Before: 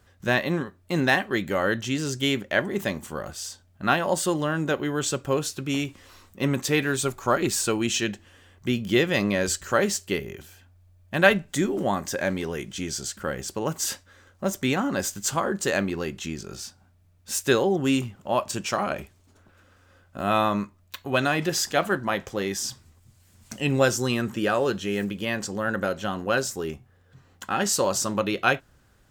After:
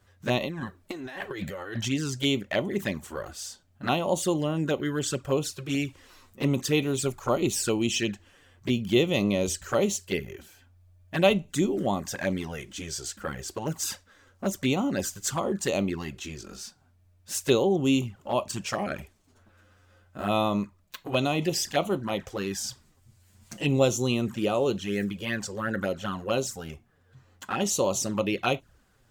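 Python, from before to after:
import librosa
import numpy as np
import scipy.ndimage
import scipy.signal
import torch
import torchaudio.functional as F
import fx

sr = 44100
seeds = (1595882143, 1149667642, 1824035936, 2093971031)

y = fx.over_compress(x, sr, threshold_db=-31.0, ratio=-1.0, at=(0.38, 1.88), fade=0.02)
y = fx.env_flanger(y, sr, rest_ms=10.5, full_db=-21.0)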